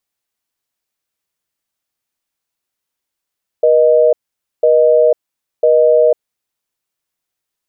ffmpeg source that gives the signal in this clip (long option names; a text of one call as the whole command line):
ffmpeg -f lavfi -i "aevalsrc='0.335*(sin(2*PI*480*t)+sin(2*PI*620*t))*clip(min(mod(t,1),0.5-mod(t,1))/0.005,0,1)':duration=2.82:sample_rate=44100" out.wav